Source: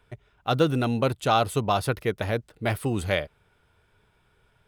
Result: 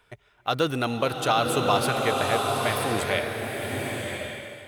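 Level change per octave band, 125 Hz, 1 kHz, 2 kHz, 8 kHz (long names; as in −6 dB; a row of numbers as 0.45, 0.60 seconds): −3.5, +2.5, +4.5, +7.0 decibels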